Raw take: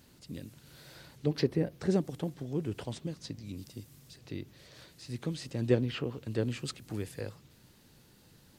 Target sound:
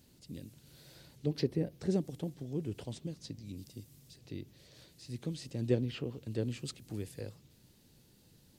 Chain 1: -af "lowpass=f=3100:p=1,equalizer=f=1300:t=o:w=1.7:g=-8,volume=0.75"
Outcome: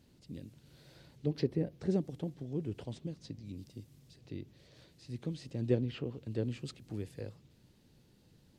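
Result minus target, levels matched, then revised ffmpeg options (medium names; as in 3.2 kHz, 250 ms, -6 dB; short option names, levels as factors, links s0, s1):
4 kHz band -4.0 dB
-af "equalizer=f=1300:t=o:w=1.7:g=-8,volume=0.75"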